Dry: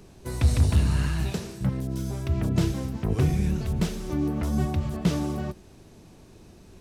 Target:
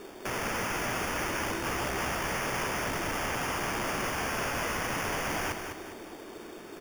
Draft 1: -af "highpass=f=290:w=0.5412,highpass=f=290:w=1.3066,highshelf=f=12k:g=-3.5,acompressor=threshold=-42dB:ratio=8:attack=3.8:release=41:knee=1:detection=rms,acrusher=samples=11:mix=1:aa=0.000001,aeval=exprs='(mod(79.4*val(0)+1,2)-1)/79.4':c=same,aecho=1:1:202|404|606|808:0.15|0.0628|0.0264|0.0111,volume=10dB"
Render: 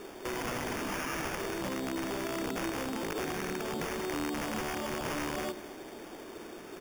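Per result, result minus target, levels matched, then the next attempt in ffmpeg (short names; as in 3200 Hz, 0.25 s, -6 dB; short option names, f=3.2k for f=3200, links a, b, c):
compressor: peak gain reduction +8.5 dB; echo-to-direct -9.5 dB
-af "highpass=f=290:w=0.5412,highpass=f=290:w=1.3066,highshelf=f=12k:g=-3.5,acompressor=threshold=-32.5dB:ratio=8:attack=3.8:release=41:knee=1:detection=rms,acrusher=samples=11:mix=1:aa=0.000001,aeval=exprs='(mod(79.4*val(0)+1,2)-1)/79.4':c=same,aecho=1:1:202|404|606|808:0.15|0.0628|0.0264|0.0111,volume=10dB"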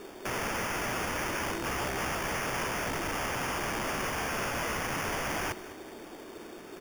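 echo-to-direct -9.5 dB
-af "highpass=f=290:w=0.5412,highpass=f=290:w=1.3066,highshelf=f=12k:g=-3.5,acompressor=threshold=-32.5dB:ratio=8:attack=3.8:release=41:knee=1:detection=rms,acrusher=samples=11:mix=1:aa=0.000001,aeval=exprs='(mod(79.4*val(0)+1,2)-1)/79.4':c=same,aecho=1:1:202|404|606|808|1010:0.447|0.188|0.0788|0.0331|0.0139,volume=10dB"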